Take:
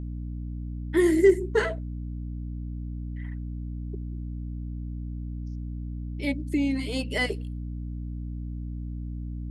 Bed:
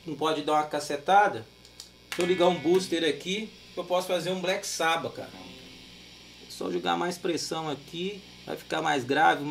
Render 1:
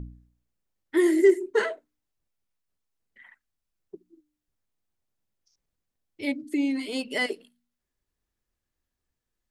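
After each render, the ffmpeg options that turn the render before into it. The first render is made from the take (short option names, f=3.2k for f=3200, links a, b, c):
-af "bandreject=f=60:t=h:w=4,bandreject=f=120:t=h:w=4,bandreject=f=180:t=h:w=4,bandreject=f=240:t=h:w=4,bandreject=f=300:t=h:w=4"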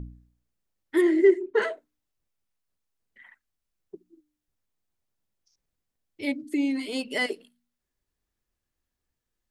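-filter_complex "[0:a]asettb=1/sr,asplit=3[a][b][c];[a]atrim=end=1.014[d];[b]atrim=start=1.01:end=1.62,asetpts=PTS-STARTPTS,afade=t=in:d=0.004:c=qsin,afade=t=out:st=0.606:d=0.004:c=qsin,lowpass=3.2k[e];[c]atrim=start=1.616[f];[d][e]acrossfade=d=0.004:c1=hsin:c2=qsin[g];[g][f]acrossfade=d=0.004:c1=qsin:c2=hsin"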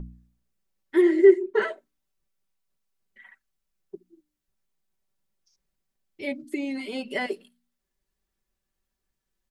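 -filter_complex "[0:a]acrossover=split=3000[a][b];[b]acompressor=threshold=-49dB:ratio=4:attack=1:release=60[c];[a][c]amix=inputs=2:normalize=0,aecho=1:1:5.2:0.54"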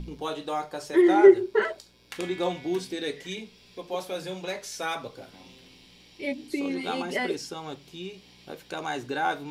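-filter_complex "[1:a]volume=-5.5dB[a];[0:a][a]amix=inputs=2:normalize=0"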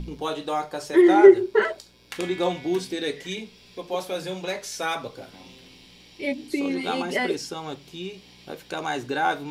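-af "volume=3.5dB,alimiter=limit=-3dB:level=0:latency=1"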